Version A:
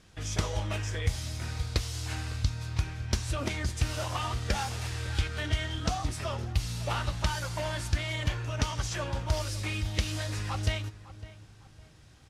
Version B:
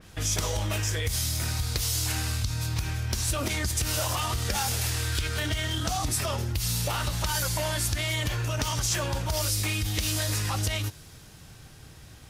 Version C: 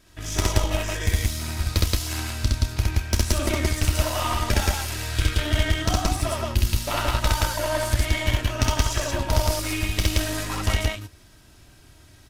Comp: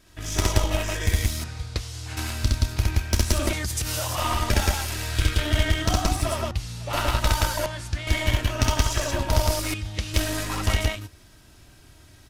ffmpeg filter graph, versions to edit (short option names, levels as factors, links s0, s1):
-filter_complex "[0:a]asplit=4[s0][s1][s2][s3];[2:a]asplit=6[s4][s5][s6][s7][s8][s9];[s4]atrim=end=1.442[s10];[s0]atrim=start=1.438:end=2.172[s11];[s5]atrim=start=2.168:end=3.532[s12];[1:a]atrim=start=3.528:end=4.182[s13];[s6]atrim=start=4.178:end=6.512[s14];[s1]atrim=start=6.508:end=6.932[s15];[s7]atrim=start=6.928:end=7.662[s16];[s2]atrim=start=7.658:end=8.072[s17];[s8]atrim=start=8.068:end=9.742[s18];[s3]atrim=start=9.738:end=10.142[s19];[s9]atrim=start=10.138[s20];[s10][s11]acrossfade=d=0.004:c1=hsin:c2=hsin[s21];[s21][s12]acrossfade=d=0.004:c1=hsin:c2=hsin[s22];[s22][s13]acrossfade=d=0.004:c1=hsin:c2=hsin[s23];[s23][s14]acrossfade=d=0.004:c1=hsin:c2=hsin[s24];[s24][s15]acrossfade=d=0.004:c1=hsin:c2=hsin[s25];[s25][s16]acrossfade=d=0.004:c1=hsin:c2=hsin[s26];[s26][s17]acrossfade=d=0.004:c1=hsin:c2=hsin[s27];[s27][s18]acrossfade=d=0.004:c1=hsin:c2=hsin[s28];[s28][s19]acrossfade=d=0.004:c1=hsin:c2=hsin[s29];[s29][s20]acrossfade=d=0.004:c1=hsin:c2=hsin"